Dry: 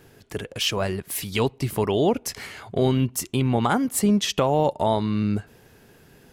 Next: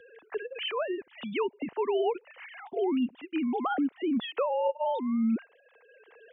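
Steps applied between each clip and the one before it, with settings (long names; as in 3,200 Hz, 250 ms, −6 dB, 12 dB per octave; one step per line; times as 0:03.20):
three sine waves on the formant tracks
multiband upward and downward compressor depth 40%
level −7 dB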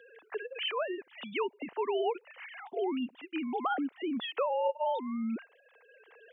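high-pass filter 480 Hz 6 dB per octave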